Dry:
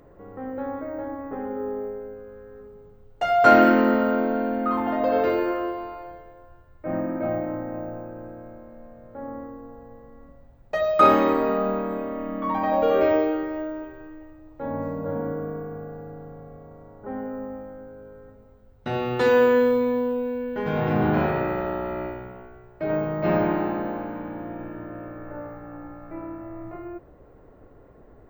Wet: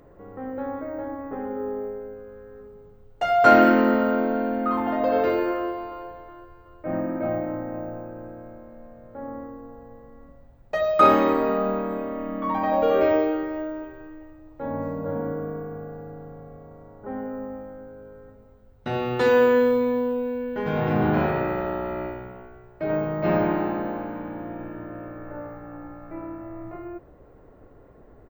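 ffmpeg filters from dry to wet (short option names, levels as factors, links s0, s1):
-filter_complex "[0:a]asplit=2[s0][s1];[s1]afade=t=in:st=5.54:d=0.01,afade=t=out:st=6.07:d=0.01,aecho=0:1:370|740|1110|1480|1850:0.199526|0.0997631|0.0498816|0.0249408|0.0124704[s2];[s0][s2]amix=inputs=2:normalize=0"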